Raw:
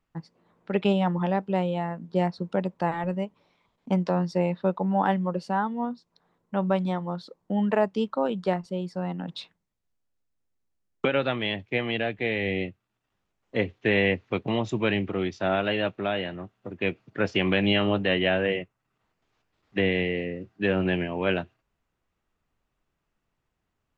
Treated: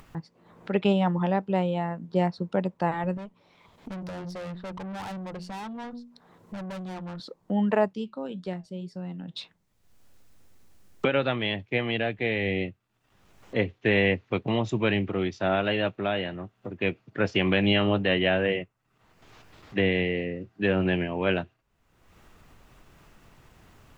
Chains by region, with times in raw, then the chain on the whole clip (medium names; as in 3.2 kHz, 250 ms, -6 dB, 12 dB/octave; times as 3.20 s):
3.17–7.20 s: hum notches 60/120/180/240 Hz + valve stage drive 36 dB, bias 0.5
7.93–9.37 s: peaking EQ 940 Hz -10 dB 2 oct + flange 1.9 Hz, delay 5.4 ms, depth 2.2 ms, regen -80%
whole clip: peaking EQ 110 Hz +2.5 dB; upward compressor, threshold -34 dBFS